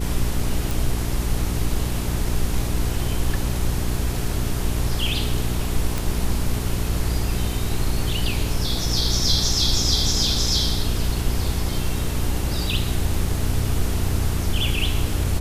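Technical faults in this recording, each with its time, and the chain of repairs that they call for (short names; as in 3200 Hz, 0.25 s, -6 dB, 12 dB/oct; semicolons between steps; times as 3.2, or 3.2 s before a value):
hum 60 Hz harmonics 7 -26 dBFS
0.71 pop
5.98 pop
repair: de-click; de-hum 60 Hz, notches 7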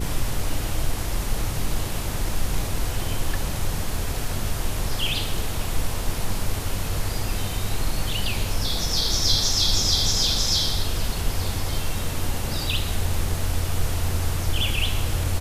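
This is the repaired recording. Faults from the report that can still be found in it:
none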